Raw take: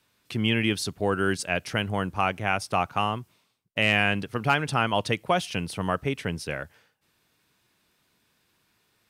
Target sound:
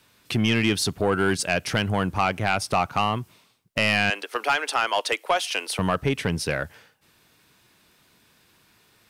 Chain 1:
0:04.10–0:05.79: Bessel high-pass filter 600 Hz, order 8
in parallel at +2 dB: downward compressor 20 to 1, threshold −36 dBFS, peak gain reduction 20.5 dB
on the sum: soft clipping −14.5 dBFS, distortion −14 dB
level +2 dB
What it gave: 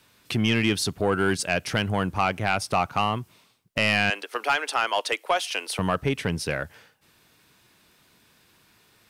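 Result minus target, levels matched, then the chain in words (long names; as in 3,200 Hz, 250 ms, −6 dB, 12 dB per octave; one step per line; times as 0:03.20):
downward compressor: peak gain reduction +6 dB
0:04.10–0:05.79: Bessel high-pass filter 600 Hz, order 8
in parallel at +2 dB: downward compressor 20 to 1, threshold −29.5 dBFS, peak gain reduction 14 dB
on the sum: soft clipping −14.5 dBFS, distortion −13 dB
level +2 dB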